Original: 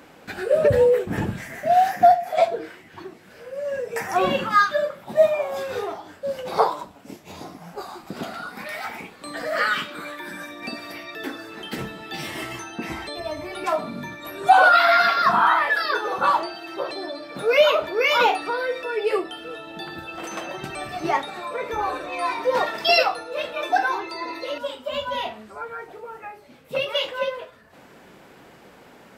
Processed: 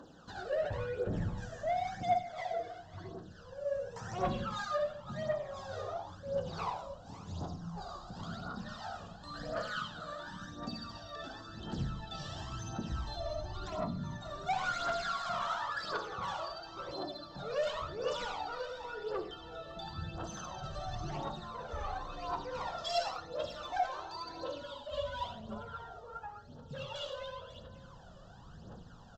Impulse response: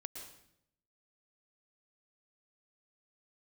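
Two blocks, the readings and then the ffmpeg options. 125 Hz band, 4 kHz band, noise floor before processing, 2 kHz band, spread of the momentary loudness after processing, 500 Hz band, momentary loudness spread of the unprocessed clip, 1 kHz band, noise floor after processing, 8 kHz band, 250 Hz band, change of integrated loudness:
-3.5 dB, -14.5 dB, -49 dBFS, -19.5 dB, 12 LU, -15.5 dB, 19 LU, -16.5 dB, -53 dBFS, -10.5 dB, -10.5 dB, -16.5 dB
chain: -filter_complex "[0:a]asuperstop=centerf=2200:order=4:qfactor=1.5,asplit=2[s0][s1];[s1]acompressor=threshold=0.0251:ratio=6,volume=0.891[s2];[s0][s2]amix=inputs=2:normalize=0,asubboost=boost=6.5:cutoff=120,aresample=16000,asoftclip=type=tanh:threshold=0.0944,aresample=44100,aecho=1:1:546:0.178[s3];[1:a]atrim=start_sample=2205,asetrate=83790,aresample=44100[s4];[s3][s4]afir=irnorm=-1:irlink=0,aphaser=in_gain=1:out_gain=1:delay=1.8:decay=0.62:speed=0.94:type=triangular,volume=0.531"

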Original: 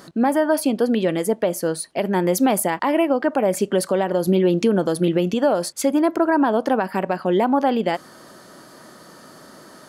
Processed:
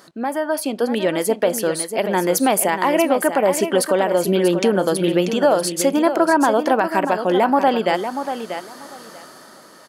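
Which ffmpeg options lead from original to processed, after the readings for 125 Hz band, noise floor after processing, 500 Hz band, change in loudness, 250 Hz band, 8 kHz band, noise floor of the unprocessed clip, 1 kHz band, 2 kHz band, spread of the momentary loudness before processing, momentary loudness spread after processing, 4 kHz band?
-2.0 dB, -44 dBFS, +2.5 dB, +1.5 dB, -0.5 dB, +5.0 dB, -46 dBFS, +4.0 dB, +4.5 dB, 5 LU, 9 LU, +5.0 dB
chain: -af "lowshelf=f=290:g=-11,dynaudnorm=f=120:g=13:m=2.82,aecho=1:1:638|1276|1914:0.355|0.0603|0.0103,volume=0.794"

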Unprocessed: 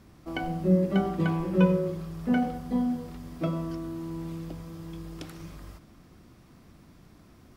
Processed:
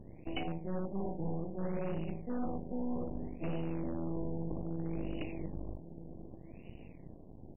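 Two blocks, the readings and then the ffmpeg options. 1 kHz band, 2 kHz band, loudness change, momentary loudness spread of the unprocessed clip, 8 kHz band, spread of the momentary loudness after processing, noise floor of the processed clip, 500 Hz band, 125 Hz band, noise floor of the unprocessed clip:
-10.0 dB, -12.5 dB, -11.0 dB, 18 LU, no reading, 14 LU, -52 dBFS, -9.0 dB, -9.5 dB, -55 dBFS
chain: -af "aecho=1:1:1121|2242|3363:0.158|0.0428|0.0116,aeval=exprs='max(val(0),0)':c=same,asuperstop=centerf=1400:order=4:qfactor=0.7,areverse,acompressor=threshold=0.0158:ratio=12,areverse,asoftclip=type=hard:threshold=0.0178,equalizer=f=3700:t=o:w=1.3:g=14.5,afftfilt=real='re*lt(b*sr/1024,980*pow(3000/980,0.5+0.5*sin(2*PI*0.63*pts/sr)))':imag='im*lt(b*sr/1024,980*pow(3000/980,0.5+0.5*sin(2*PI*0.63*pts/sr)))':win_size=1024:overlap=0.75,volume=2.11"

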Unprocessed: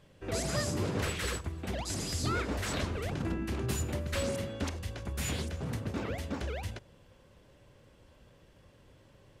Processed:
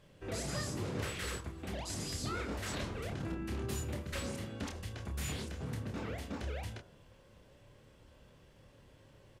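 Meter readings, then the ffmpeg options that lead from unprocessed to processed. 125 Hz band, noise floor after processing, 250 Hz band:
-5.0 dB, -62 dBFS, -5.0 dB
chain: -filter_complex "[0:a]bandreject=f=79.79:t=h:w=4,bandreject=f=159.58:t=h:w=4,bandreject=f=239.37:t=h:w=4,bandreject=f=319.16:t=h:w=4,bandreject=f=398.95:t=h:w=4,bandreject=f=478.74:t=h:w=4,bandreject=f=558.53:t=h:w=4,bandreject=f=638.32:t=h:w=4,bandreject=f=718.11:t=h:w=4,bandreject=f=797.9:t=h:w=4,bandreject=f=877.69:t=h:w=4,bandreject=f=957.48:t=h:w=4,bandreject=f=1037.27:t=h:w=4,bandreject=f=1117.06:t=h:w=4,bandreject=f=1196.85:t=h:w=4,bandreject=f=1276.64:t=h:w=4,bandreject=f=1356.43:t=h:w=4,bandreject=f=1436.22:t=h:w=4,bandreject=f=1516.01:t=h:w=4,bandreject=f=1595.8:t=h:w=4,bandreject=f=1675.59:t=h:w=4,asplit=2[s0][s1];[s1]acompressor=threshold=0.00891:ratio=6,volume=1.19[s2];[s0][s2]amix=inputs=2:normalize=0,asplit=2[s3][s4];[s4]adelay=28,volume=0.501[s5];[s3][s5]amix=inputs=2:normalize=0,volume=0.376"

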